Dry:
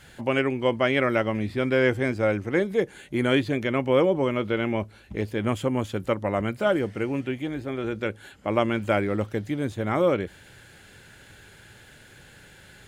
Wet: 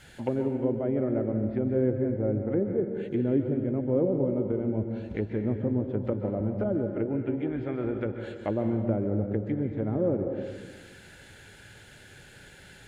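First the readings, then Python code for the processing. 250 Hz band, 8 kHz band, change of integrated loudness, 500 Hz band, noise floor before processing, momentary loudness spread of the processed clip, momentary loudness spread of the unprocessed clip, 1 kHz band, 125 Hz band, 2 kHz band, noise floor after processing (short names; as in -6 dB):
-0.5 dB, n/a, -3.5 dB, -4.0 dB, -51 dBFS, 7 LU, 8 LU, -12.5 dB, 0.0 dB, -18.0 dB, -51 dBFS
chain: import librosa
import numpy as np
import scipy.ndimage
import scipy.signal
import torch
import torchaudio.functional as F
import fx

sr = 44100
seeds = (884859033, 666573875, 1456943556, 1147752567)

y = fx.env_lowpass_down(x, sr, base_hz=420.0, full_db=-22.5)
y = fx.peak_eq(y, sr, hz=1100.0, db=-6.0, octaves=0.25)
y = fx.rev_plate(y, sr, seeds[0], rt60_s=1.5, hf_ratio=0.85, predelay_ms=120, drr_db=5.0)
y = F.gain(torch.from_numpy(y), -1.5).numpy()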